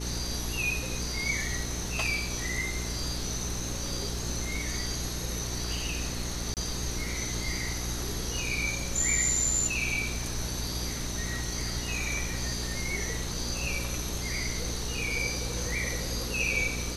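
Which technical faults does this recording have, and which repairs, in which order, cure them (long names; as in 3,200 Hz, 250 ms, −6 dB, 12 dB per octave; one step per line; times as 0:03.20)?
mains hum 60 Hz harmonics 7 −36 dBFS
0:06.54–0:06.57: drop-out 28 ms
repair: hum removal 60 Hz, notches 7
repair the gap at 0:06.54, 28 ms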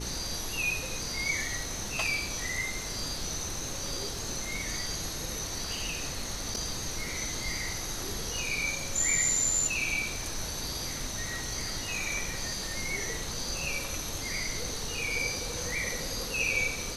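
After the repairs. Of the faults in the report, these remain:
none of them is left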